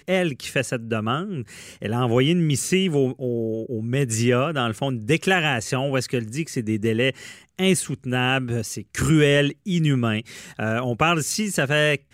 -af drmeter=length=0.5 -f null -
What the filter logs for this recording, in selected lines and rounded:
Channel 1: DR: 9.1
Overall DR: 9.1